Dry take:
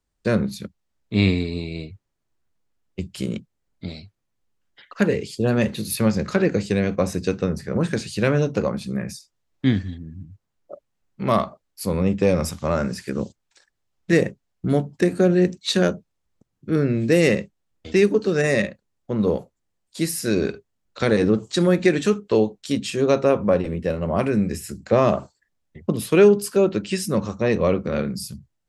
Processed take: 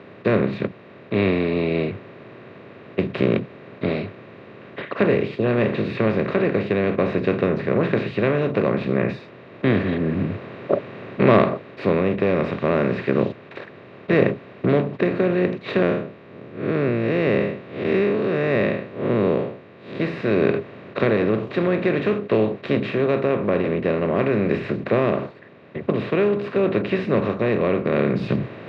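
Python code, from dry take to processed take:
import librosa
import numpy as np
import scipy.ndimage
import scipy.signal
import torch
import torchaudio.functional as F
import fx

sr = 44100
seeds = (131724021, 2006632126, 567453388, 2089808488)

y = fx.spec_blur(x, sr, span_ms=128.0, at=(15.82, 20.0))
y = fx.bin_compress(y, sr, power=0.4)
y = scipy.signal.sosfilt(scipy.signal.ellip(3, 1.0, 80, [110.0, 2800.0], 'bandpass', fs=sr, output='sos'), y)
y = fx.rider(y, sr, range_db=10, speed_s=0.5)
y = F.gain(torch.from_numpy(y), -5.5).numpy()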